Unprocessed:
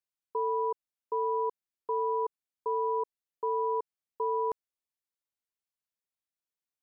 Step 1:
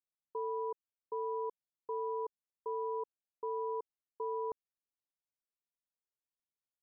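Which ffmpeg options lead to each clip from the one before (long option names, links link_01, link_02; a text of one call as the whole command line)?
ffmpeg -i in.wav -af "lowpass=1000,volume=-6dB" out.wav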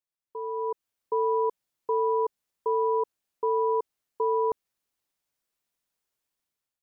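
ffmpeg -i in.wav -af "dynaudnorm=framelen=270:gausssize=5:maxgain=12dB" out.wav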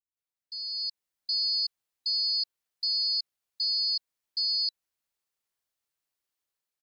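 ffmpeg -i in.wav -filter_complex "[0:a]afftfilt=real='real(if(lt(b,736),b+184*(1-2*mod(floor(b/184),2)),b),0)':imag='imag(if(lt(b,736),b+184*(1-2*mod(floor(b/184),2)),b),0)':win_size=2048:overlap=0.75,acrossover=split=230[link_01][link_02];[link_02]adelay=170[link_03];[link_01][link_03]amix=inputs=2:normalize=0,volume=-3dB" out.wav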